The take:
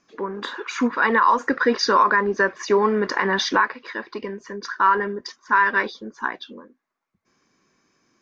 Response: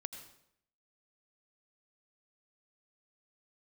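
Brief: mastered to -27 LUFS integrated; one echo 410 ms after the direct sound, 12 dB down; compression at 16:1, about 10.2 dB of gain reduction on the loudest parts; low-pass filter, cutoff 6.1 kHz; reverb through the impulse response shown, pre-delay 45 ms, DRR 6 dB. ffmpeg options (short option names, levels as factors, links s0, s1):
-filter_complex "[0:a]lowpass=6100,acompressor=threshold=0.0794:ratio=16,aecho=1:1:410:0.251,asplit=2[s0][s1];[1:a]atrim=start_sample=2205,adelay=45[s2];[s1][s2]afir=irnorm=-1:irlink=0,volume=0.668[s3];[s0][s3]amix=inputs=2:normalize=0"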